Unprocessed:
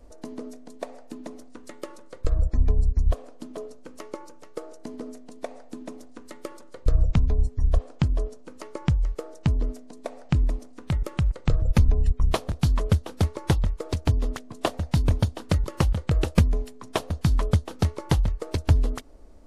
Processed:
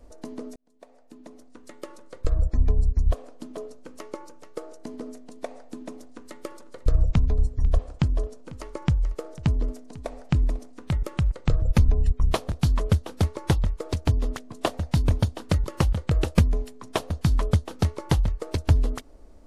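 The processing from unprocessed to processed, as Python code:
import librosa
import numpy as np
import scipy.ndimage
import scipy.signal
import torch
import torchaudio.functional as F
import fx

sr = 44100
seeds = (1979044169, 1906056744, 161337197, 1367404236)

y = fx.echo_single(x, sr, ms=496, db=-19.5, at=(5.93, 10.71))
y = fx.edit(y, sr, fx.fade_in_span(start_s=0.56, length_s=1.61), tone=tone)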